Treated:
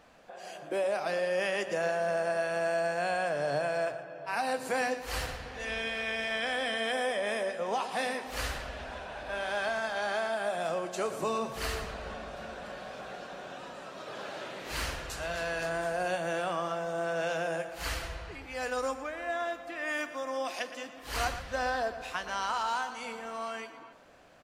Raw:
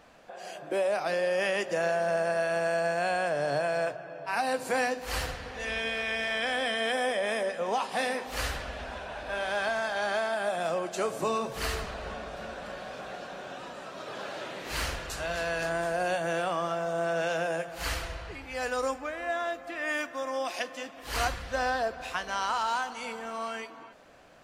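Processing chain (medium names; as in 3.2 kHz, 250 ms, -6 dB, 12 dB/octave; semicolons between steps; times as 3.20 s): echo from a far wall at 20 m, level -12 dB; trim -2.5 dB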